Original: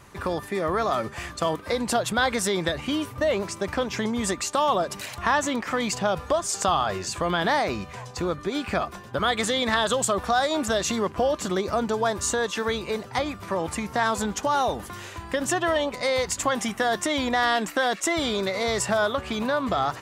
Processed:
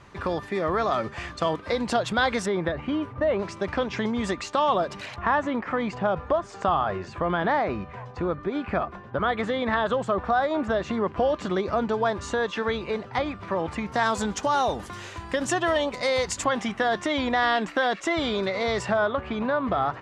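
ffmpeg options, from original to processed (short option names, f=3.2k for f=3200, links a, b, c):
-af "asetnsamples=n=441:p=0,asendcmd='2.46 lowpass f 1800;3.39 lowpass f 3800;5.16 lowpass f 1900;11.08 lowpass f 3200;13.92 lowpass f 7400;16.44 lowpass f 3800;18.92 lowpass f 2200',lowpass=4.8k"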